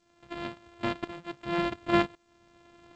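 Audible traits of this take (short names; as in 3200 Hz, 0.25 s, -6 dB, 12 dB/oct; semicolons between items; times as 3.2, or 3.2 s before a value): a buzz of ramps at a fixed pitch in blocks of 128 samples; tremolo saw up 0.93 Hz, depth 90%; G.722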